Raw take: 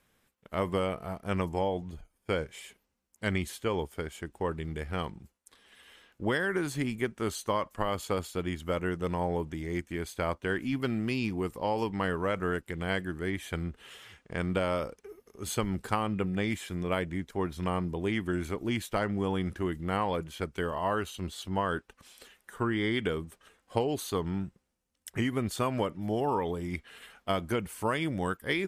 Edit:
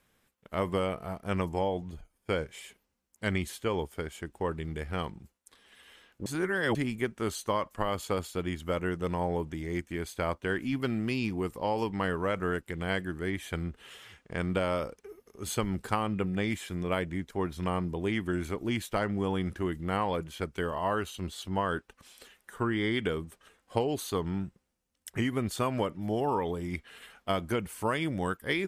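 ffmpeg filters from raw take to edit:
-filter_complex "[0:a]asplit=3[s0][s1][s2];[s0]atrim=end=6.262[s3];[s1]atrim=start=6.258:end=6.752,asetpts=PTS-STARTPTS,areverse[s4];[s2]atrim=start=6.748[s5];[s3][s4]acrossfade=d=0.004:c1=hsin:c2=hsin[s6];[s6][s5]acrossfade=d=0.004:c1=hsin:c2=hsin"

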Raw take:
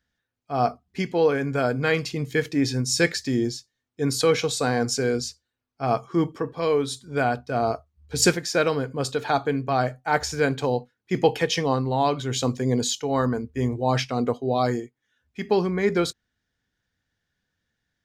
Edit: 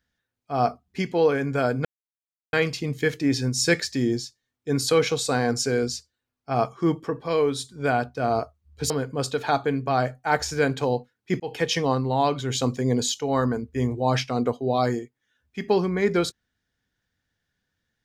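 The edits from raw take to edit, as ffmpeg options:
-filter_complex "[0:a]asplit=4[s0][s1][s2][s3];[s0]atrim=end=1.85,asetpts=PTS-STARTPTS,afade=t=out:st=1.846:d=0.004:c=hsin,apad=pad_dur=0.68[s4];[s1]atrim=start=1.85:end=8.222,asetpts=PTS-STARTPTS,afade=t=in:d=0.004:c=hsin[s5];[s2]atrim=start=8.708:end=11.21,asetpts=PTS-STARTPTS,afade=t=out:st=2.498:d=0.004:c=hsin[s6];[s3]atrim=start=11.21,asetpts=PTS-STARTPTS,afade=t=in:d=0.26[s7];[s4][s5]concat=n=2:v=0:a=1[s8];[s6][s7]concat=n=2:v=0:a=1[s9];[s8][s9]acrossfade=d=0.004:c1=hsin:c2=hsin"

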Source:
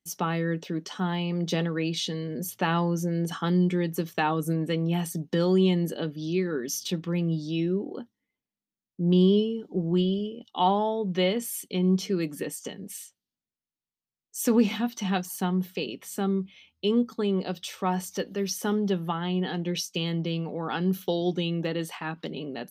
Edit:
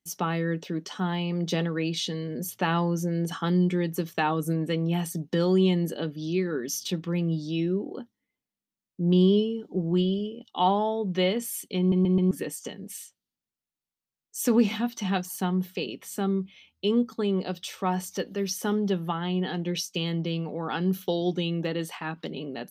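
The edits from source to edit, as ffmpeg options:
-filter_complex "[0:a]asplit=5[s0][s1][s2][s3][s4];[s0]atrim=end=11.922[s5];[s1]atrim=start=11.788:end=11.922[s6];[s2]atrim=start=11.788:end=11.922[s7];[s3]atrim=start=11.788:end=11.922[s8];[s4]atrim=start=12.308[s9];[s5][s6]acrossfade=d=0.004:c1=hsin:c2=hsin[s10];[s10][s7]acrossfade=d=0.004:c1=hsin:c2=hsin[s11];[s11][s8]acrossfade=d=0.004:c1=hsin:c2=hsin[s12];[s12][s9]acrossfade=d=0.004:c1=hsin:c2=hsin"

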